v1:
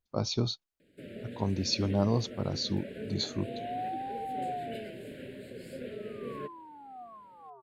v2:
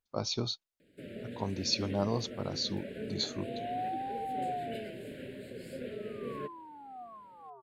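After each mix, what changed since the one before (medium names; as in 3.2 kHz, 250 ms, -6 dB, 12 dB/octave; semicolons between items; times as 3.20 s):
speech: add bass shelf 340 Hz -7.5 dB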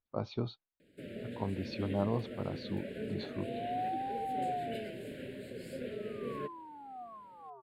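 speech: add distance through air 490 m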